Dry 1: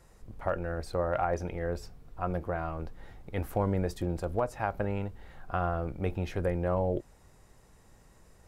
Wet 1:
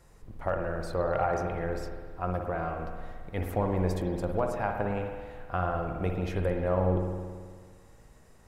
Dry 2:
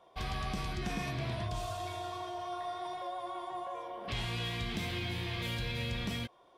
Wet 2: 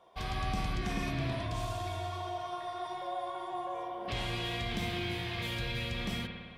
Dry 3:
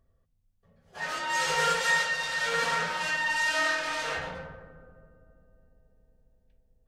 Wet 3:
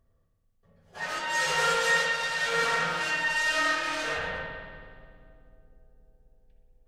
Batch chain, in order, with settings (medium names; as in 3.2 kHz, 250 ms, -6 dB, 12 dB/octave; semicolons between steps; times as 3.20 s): spring tank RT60 1.7 s, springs 54 ms, chirp 50 ms, DRR 3 dB